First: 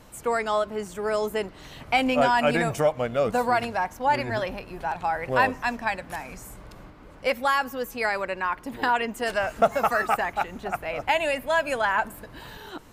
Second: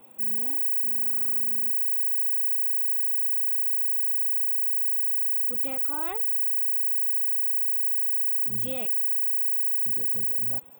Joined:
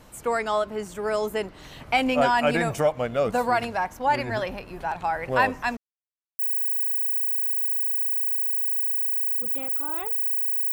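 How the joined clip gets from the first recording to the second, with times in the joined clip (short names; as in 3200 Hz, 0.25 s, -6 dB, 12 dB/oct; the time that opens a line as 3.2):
first
5.77–6.39 mute
6.39 switch to second from 2.48 s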